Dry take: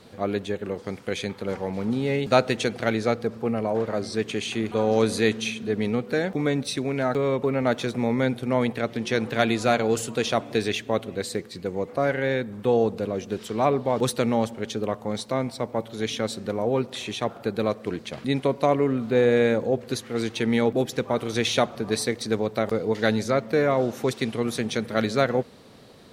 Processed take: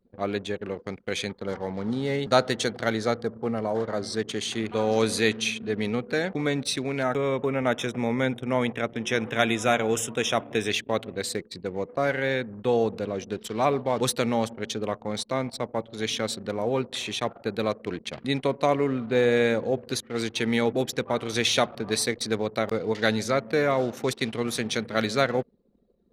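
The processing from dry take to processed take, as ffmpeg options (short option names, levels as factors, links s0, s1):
-filter_complex "[0:a]asettb=1/sr,asplit=3[s0][s1][s2];[s0]atrim=end=1.294[s3];[s1]atrim=start=1.29:end=4.58,asetpts=PTS-STARTPTS,afade=t=in:d=0.004:c=qsin,afade=t=out:st=3.286:d=0.004:c=qsin,equalizer=f=2500:w=5.3:g=-11.5[s4];[s2]atrim=start=4.576[s5];[s3][s4]acrossfade=d=0.004:c1=hsin:c2=qsin[s6];[s6][s5]acrossfade=d=0.004:c1=qsin:c2=hsin,asettb=1/sr,asplit=3[s7][s8][s9];[s7]atrim=end=7.034[s10];[s8]atrim=start=7.03:end=10.7,asetpts=PTS-STARTPTS,afade=t=in:d=0.004:c=qsin,afade=t=out:st=3.666:d=0.004:c=qsin,asuperstop=centerf=4400:order=8:qfactor=3.2[s11];[s9]atrim=start=10.696[s12];[s10][s11]acrossfade=d=0.004:c1=hsin:c2=qsin[s13];[s13][s12]acrossfade=d=0.004:c1=qsin:c2=hsin,anlmdn=0.631,tiltshelf=f=1200:g=-3"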